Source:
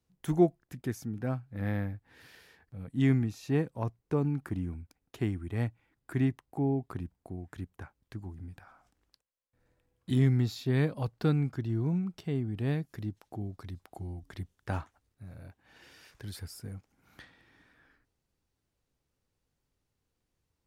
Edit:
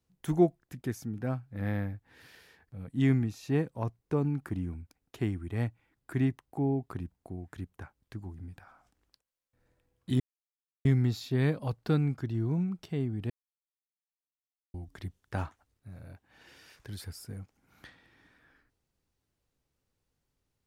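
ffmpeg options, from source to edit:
-filter_complex "[0:a]asplit=4[a][b][c][d];[a]atrim=end=10.2,asetpts=PTS-STARTPTS,afade=t=out:st=10.196:d=0.004:c=hsin,apad=pad_dur=0.65[e];[b]atrim=start=10.2:end=12.65,asetpts=PTS-STARTPTS,afade=t=in:d=0.004:c=hsin,afade=t=out:st=2.446:d=0.004:c=hsin[f];[c]atrim=start=12.65:end=14.09,asetpts=PTS-STARTPTS,volume=0[g];[d]atrim=start=14.09,asetpts=PTS-STARTPTS,afade=t=in:d=0.004:c=hsin[h];[e][f][g][h]concat=n=4:v=0:a=1"

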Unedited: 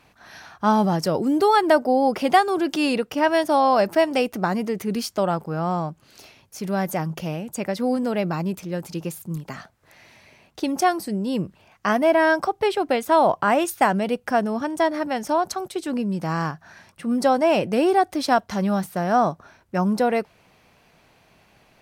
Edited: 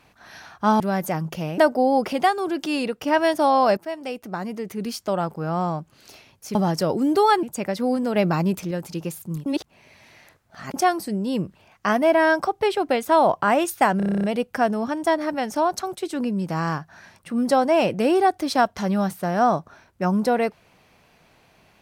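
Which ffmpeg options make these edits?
-filter_complex "[0:a]asplit=21[a][b][c][d][e][f][g][h][i][j][k][l][m][n][o][p][q][r][s][t][u];[a]atrim=end=0.802[v];[b]atrim=start=6.648:end=7.432[w];[c]atrim=start=1.678:end=2.232[x];[d]atrim=start=2.228:end=3.122,asetpts=PTS-STARTPTS,volume=-3dB[y];[e]atrim=start=3.118:end=3.87,asetpts=PTS-STARTPTS,afade=t=out:st=0.748:d=0.004:c=hsin:silence=0.188365[z];[f]atrim=start=3.87:end=6.652,asetpts=PTS-STARTPTS,afade=t=in:d=1.81:silence=0.188365[aa];[g]atrim=start=0.798:end=1.682[ab];[h]atrim=start=7.428:end=8.162[ac];[i]atrim=start=8.158:end=8.712,asetpts=PTS-STARTPTS,volume=4dB[ad];[j]atrim=start=8.708:end=9.462[ae];[k]atrim=start=9.458:end=10.742,asetpts=PTS-STARTPTS,areverse[af];[l]atrim=start=10.738:end=14.002[ag];[m]atrim=start=13.968:end=14.002[ah];[n]atrim=start=13.968:end=14.002[ai];[o]atrim=start=13.968:end=14.002[aj];[p]atrim=start=13.968:end=14.002[ak];[q]atrim=start=13.968:end=14.002[al];[r]atrim=start=13.968:end=14.002[am];[s]atrim=start=13.968:end=14.002[an];[t]atrim=start=13.968:end=14.002[ao];[u]atrim=start=13.968[ap];[v][w]acrossfade=d=0.004:c1=hsin:c2=hsin[aq];[aq][x]acrossfade=d=0.004:c1=hsin:c2=hsin[ar];[ar][y]acrossfade=d=0.004:c1=hsin:c2=hsin[as];[z][aa]concat=n=2:v=0:a=1[at];[as][at]acrossfade=d=0.004:c1=hsin:c2=hsin[au];[au][ab]acrossfade=d=0.004:c1=hsin:c2=hsin[av];[av][ac]acrossfade=d=0.004:c1=hsin:c2=hsin[aw];[aw][ad]acrossfade=d=0.004:c1=hsin:c2=hsin[ax];[ax][ae]acrossfade=d=0.004:c1=hsin:c2=hsin[ay];[ay][af]acrossfade=d=0.004:c1=hsin:c2=hsin[az];[az][ag]acrossfade=d=0.004:c1=hsin:c2=hsin[ba];[ba][ah]acrossfade=d=0.004:c1=hsin:c2=hsin[bb];[bb][ai]acrossfade=d=0.004:c1=hsin:c2=hsin[bc];[bc][aj]acrossfade=d=0.004:c1=hsin:c2=hsin[bd];[bd][ak]acrossfade=d=0.004:c1=hsin:c2=hsin[be];[be][al]acrossfade=d=0.004:c1=hsin:c2=hsin[bf];[bf][am]acrossfade=d=0.004:c1=hsin:c2=hsin[bg];[bg][an]acrossfade=d=0.004:c1=hsin:c2=hsin[bh];[bh][ao]acrossfade=d=0.004:c1=hsin:c2=hsin[bi];[bi][ap]acrossfade=d=0.004:c1=hsin:c2=hsin"

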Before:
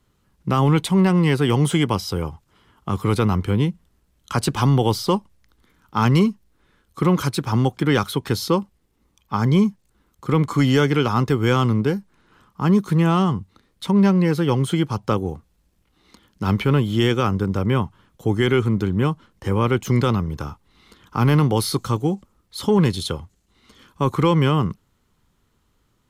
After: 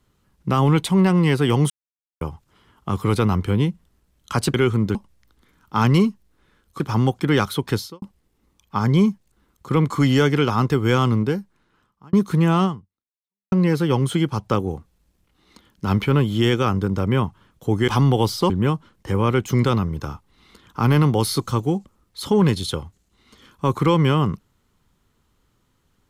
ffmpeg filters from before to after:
-filter_complex "[0:a]asplit=11[a][b][c][d][e][f][g][h][i][j][k];[a]atrim=end=1.7,asetpts=PTS-STARTPTS,afade=t=out:st=1.696:d=0.004:c=hsin[l];[b]atrim=start=1.7:end=2.21,asetpts=PTS-STARTPTS,volume=0[m];[c]atrim=start=2.21:end=4.542,asetpts=PTS-STARTPTS,afade=t=in:d=0.004:c=hsin[n];[d]atrim=start=18.458:end=18.872[o];[e]atrim=start=5.158:end=7.012[p];[f]atrim=start=7.378:end=8.6,asetpts=PTS-STARTPTS,afade=t=out:st=0.962:d=0.26:c=qua[q];[g]atrim=start=8.6:end=12.71,asetpts=PTS-STARTPTS,afade=t=in:d=0.004:c=hsin,afade=t=out:st=3.14:d=0.97[r];[h]atrim=start=12.71:end=14.1,asetpts=PTS-STARTPTS,afade=t=in:d=0.004:c=hsin,afade=t=out:st=0.52:d=0.87:c=exp[s];[i]atrim=start=14.1:end=18.462,asetpts=PTS-STARTPTS,afade=t=in:d=0.004:c=hsin[t];[j]atrim=start=4.538:end=5.162[u];[k]atrim=start=18.868[v];[l][m][n]concat=n=3:v=0:a=1[w];[w][o]acrossfade=d=0.004:c1=hsin:c2=hsin[x];[x][p]acrossfade=d=0.004:c1=hsin:c2=hsin[y];[q][r][s][t]concat=n=4:v=0:a=1[z];[y][z]acrossfade=d=0.004:c1=hsin:c2=hsin[aa];[aa][u]acrossfade=d=0.004:c1=hsin:c2=hsin[ab];[ab][v]acrossfade=d=0.004:c1=hsin:c2=hsin"

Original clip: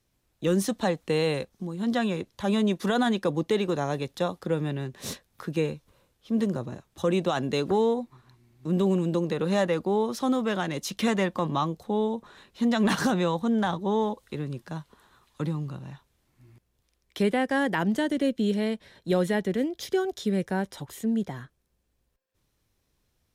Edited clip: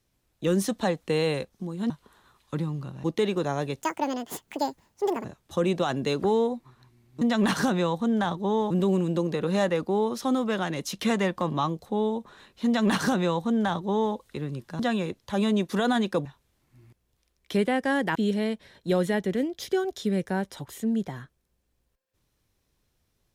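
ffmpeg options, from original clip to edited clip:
-filter_complex "[0:a]asplit=10[a][b][c][d][e][f][g][h][i][j];[a]atrim=end=1.902[k];[b]atrim=start=14.768:end=15.912[l];[c]atrim=start=3.358:end=4.134[m];[d]atrim=start=4.13:end=6.71,asetpts=PTS-STARTPTS,asetrate=79380,aresample=44100[n];[e]atrim=start=6.706:end=8.682[o];[f]atrim=start=12.628:end=14.122[p];[g]atrim=start=8.678:end=14.772[q];[h]atrim=start=1.898:end=3.362[r];[i]atrim=start=15.908:end=17.812[s];[j]atrim=start=18.358[t];[k][l]acrossfade=d=0.004:c1=hsin:c2=hsin[u];[u][m]acrossfade=d=0.004:c1=hsin:c2=hsin[v];[v][n]acrossfade=d=0.004:c1=hsin:c2=hsin[w];[w][o]acrossfade=d=0.004:c1=hsin:c2=hsin[x];[x][p]acrossfade=d=0.004:c1=hsin:c2=hsin[y];[y][q]acrossfade=d=0.004:c1=hsin:c2=hsin[z];[z][r]acrossfade=d=0.004:c1=hsin:c2=hsin[aa];[aa][s]acrossfade=d=0.004:c1=hsin:c2=hsin[ab];[ab][t]acrossfade=d=0.004:c1=hsin:c2=hsin"

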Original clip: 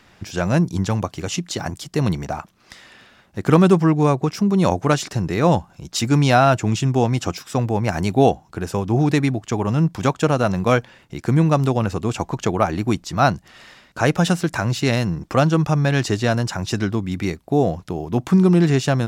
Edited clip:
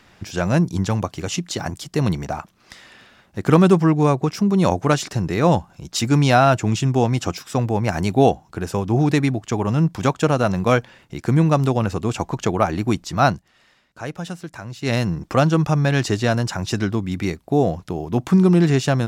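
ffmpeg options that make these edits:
-filter_complex "[0:a]asplit=3[a][b][c];[a]atrim=end=13.44,asetpts=PTS-STARTPTS,afade=t=out:st=13.27:d=0.17:c=qsin:silence=0.237137[d];[b]atrim=start=13.44:end=14.81,asetpts=PTS-STARTPTS,volume=-12.5dB[e];[c]atrim=start=14.81,asetpts=PTS-STARTPTS,afade=t=in:d=0.17:c=qsin:silence=0.237137[f];[d][e][f]concat=n=3:v=0:a=1"

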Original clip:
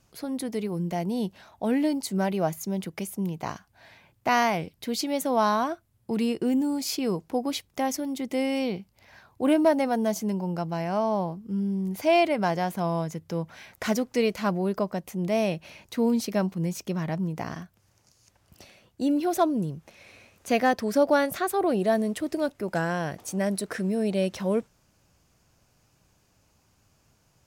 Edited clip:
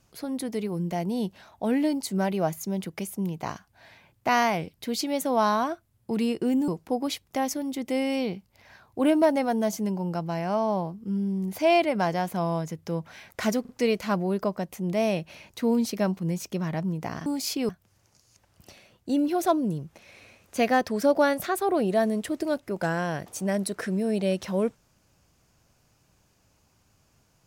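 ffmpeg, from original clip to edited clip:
-filter_complex "[0:a]asplit=6[a][b][c][d][e][f];[a]atrim=end=6.682[g];[b]atrim=start=7.108:end=14.082[h];[c]atrim=start=14.038:end=14.082[i];[d]atrim=start=14.038:end=17.612[j];[e]atrim=start=6.678:end=7.112[k];[f]atrim=start=17.608[l];[g][h]acrossfade=d=0.004:c1=hsin:c2=hsin[m];[m][i]acrossfade=d=0.004:c1=hsin:c2=hsin[n];[n][j]acrossfade=d=0.004:c1=hsin:c2=hsin[o];[o][k]acrossfade=d=0.004:c1=hsin:c2=hsin[p];[p][l]acrossfade=d=0.004:c1=hsin:c2=hsin"

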